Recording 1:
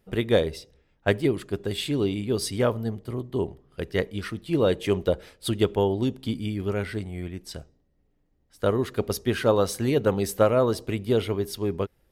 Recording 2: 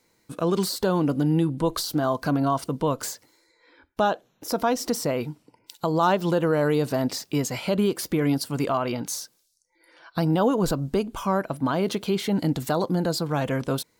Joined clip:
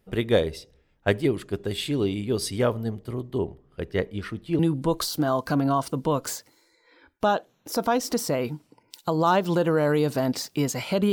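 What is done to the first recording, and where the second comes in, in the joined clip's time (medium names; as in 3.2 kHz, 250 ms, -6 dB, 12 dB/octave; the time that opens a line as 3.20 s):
recording 1
3.38–4.59 s: treble shelf 3.5 kHz -8 dB
4.59 s: go over to recording 2 from 1.35 s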